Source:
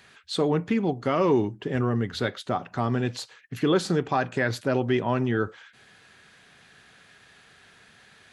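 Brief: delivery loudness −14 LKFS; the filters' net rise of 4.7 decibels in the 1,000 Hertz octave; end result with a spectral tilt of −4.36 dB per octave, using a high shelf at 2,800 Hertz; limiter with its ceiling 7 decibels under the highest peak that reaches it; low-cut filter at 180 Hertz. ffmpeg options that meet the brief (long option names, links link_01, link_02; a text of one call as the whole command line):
ffmpeg -i in.wav -af "highpass=180,equalizer=frequency=1000:width_type=o:gain=5,highshelf=frequency=2800:gain=7.5,volume=13dB,alimiter=limit=-2dB:level=0:latency=1" out.wav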